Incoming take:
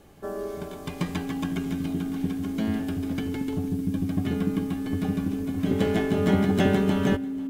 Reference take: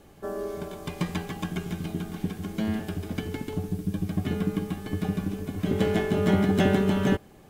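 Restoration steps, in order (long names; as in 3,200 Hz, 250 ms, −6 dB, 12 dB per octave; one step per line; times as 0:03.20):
notch filter 270 Hz, Q 30
echo removal 491 ms −20.5 dB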